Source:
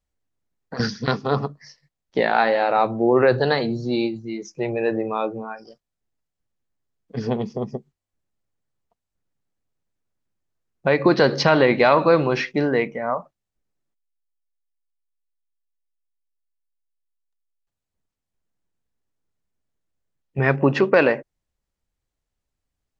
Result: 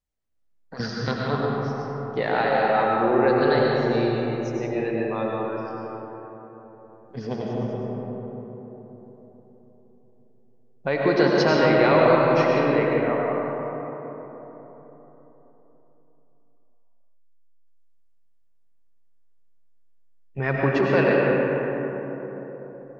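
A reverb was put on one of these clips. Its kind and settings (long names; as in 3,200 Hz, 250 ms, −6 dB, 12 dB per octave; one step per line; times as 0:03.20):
comb and all-pass reverb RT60 4.2 s, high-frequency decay 0.35×, pre-delay 60 ms, DRR −3.5 dB
level −6.5 dB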